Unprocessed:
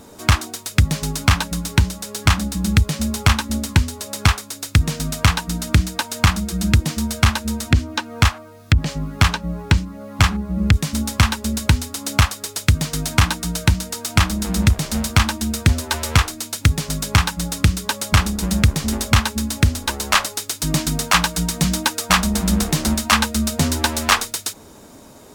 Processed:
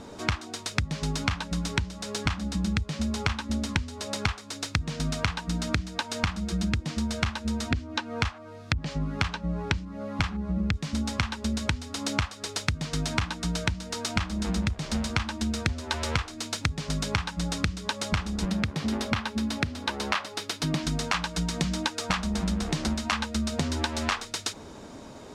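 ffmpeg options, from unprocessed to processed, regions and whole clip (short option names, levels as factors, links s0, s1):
-filter_complex "[0:a]asettb=1/sr,asplit=3[s0][s1][s2];[s0]atrim=end=18.454[s3];[s1]atrim=start=18.45:end=20.83,asetpts=PTS-STARTPTS,afade=t=in:d=0.004:c=qsin,afade=t=out:st=2.376:d=0.004:c=qsin,highpass=110,equalizer=f=7300:w=1.2:g=-6.5[s4];[s2]atrim=start=20.826[s5];[s3][s4]acrossfade=d=0.004:c1=hsin:c2=qsin[s6];[s6][s5]acrossfade=d=0.004:c1=qsin:c2=hsin,lowpass=5400,acompressor=threshold=0.0631:ratio=12"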